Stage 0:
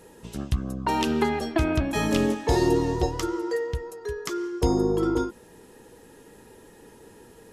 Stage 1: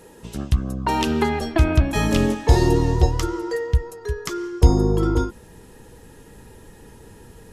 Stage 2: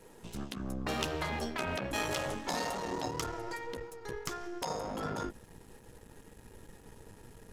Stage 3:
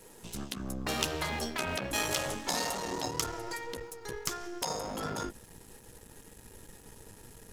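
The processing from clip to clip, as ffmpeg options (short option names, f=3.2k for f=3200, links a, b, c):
-af "asubboost=boost=3.5:cutoff=160,volume=3.5dB"
-af "aeval=exprs='if(lt(val(0),0),0.251*val(0),val(0))':c=same,afftfilt=real='re*lt(hypot(re,im),0.282)':imag='im*lt(hypot(re,im),0.282)':win_size=1024:overlap=0.75,volume=-5.5dB"
-af "highshelf=f=3.8k:g=10"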